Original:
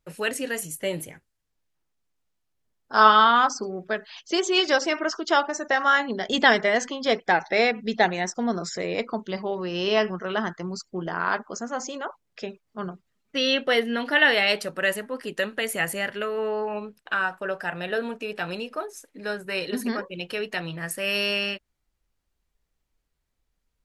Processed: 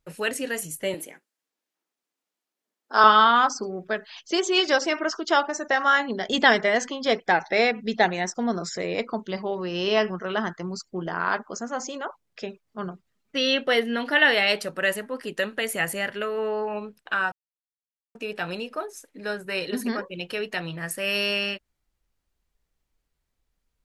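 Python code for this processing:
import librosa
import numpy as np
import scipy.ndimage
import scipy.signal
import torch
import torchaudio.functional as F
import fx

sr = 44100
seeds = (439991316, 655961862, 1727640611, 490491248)

y = fx.highpass(x, sr, hz=240.0, slope=24, at=(0.94, 3.04))
y = fx.edit(y, sr, fx.silence(start_s=17.32, length_s=0.83), tone=tone)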